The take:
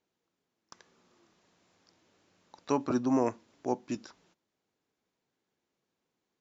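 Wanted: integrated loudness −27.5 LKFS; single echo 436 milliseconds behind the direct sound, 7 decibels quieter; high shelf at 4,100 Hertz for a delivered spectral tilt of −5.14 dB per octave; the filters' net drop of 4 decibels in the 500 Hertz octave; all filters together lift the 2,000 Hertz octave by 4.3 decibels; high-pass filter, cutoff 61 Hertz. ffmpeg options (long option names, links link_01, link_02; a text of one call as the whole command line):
ffmpeg -i in.wav -af "highpass=61,equalizer=frequency=500:width_type=o:gain=-5.5,equalizer=frequency=2000:width_type=o:gain=4.5,highshelf=frequency=4100:gain=7,aecho=1:1:436:0.447,volume=6dB" out.wav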